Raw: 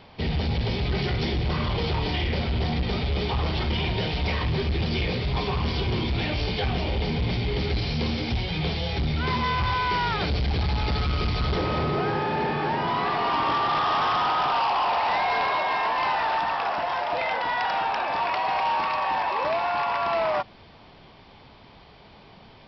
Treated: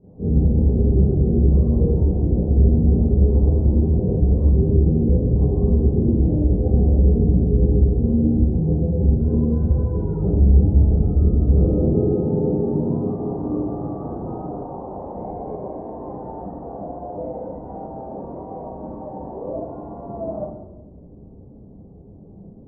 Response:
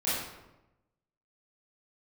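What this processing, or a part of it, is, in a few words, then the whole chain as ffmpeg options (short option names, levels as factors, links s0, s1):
next room: -filter_complex "[0:a]lowpass=f=440:w=0.5412,lowpass=f=440:w=1.3066[s0];[1:a]atrim=start_sample=2205[s1];[s0][s1]afir=irnorm=-1:irlink=0"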